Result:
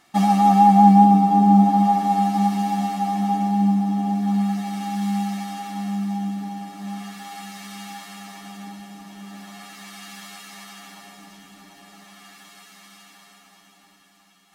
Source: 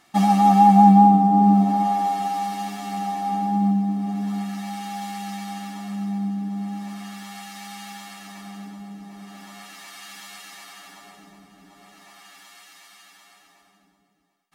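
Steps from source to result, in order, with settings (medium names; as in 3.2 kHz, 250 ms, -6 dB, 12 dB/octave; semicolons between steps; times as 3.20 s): echo that smears into a reverb 700 ms, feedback 65%, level -9.5 dB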